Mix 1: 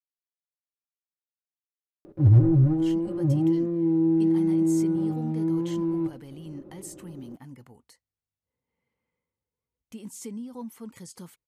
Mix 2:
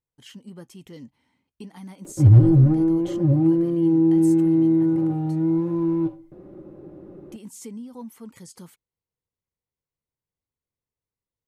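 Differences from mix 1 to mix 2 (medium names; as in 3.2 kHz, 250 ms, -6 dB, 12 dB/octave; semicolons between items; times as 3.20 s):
speech: entry -2.60 s; background +4.5 dB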